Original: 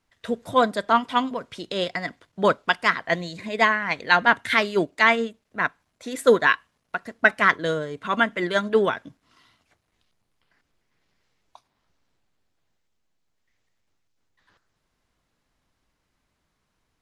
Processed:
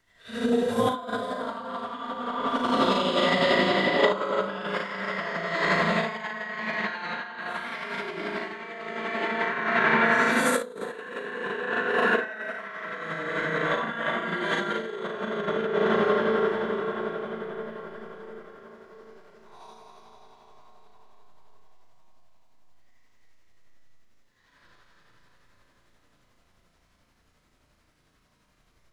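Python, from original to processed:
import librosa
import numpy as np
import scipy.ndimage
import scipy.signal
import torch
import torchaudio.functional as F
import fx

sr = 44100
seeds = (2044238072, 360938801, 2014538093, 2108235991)

y = fx.phase_scramble(x, sr, seeds[0], window_ms=200)
y = fx.notch(y, sr, hz=820.0, q=23.0)
y = fx.rev_freeverb(y, sr, rt60_s=3.8, hf_ratio=0.75, predelay_ms=60, drr_db=-1.5)
y = fx.over_compress(y, sr, threshold_db=-25.0, ratio=-0.5)
y = fx.spec_box(y, sr, start_s=2.36, length_s=0.25, low_hz=250.0, high_hz=7600.0, gain_db=6)
y = fx.stretch_grains(y, sr, factor=1.7, grain_ms=176.0)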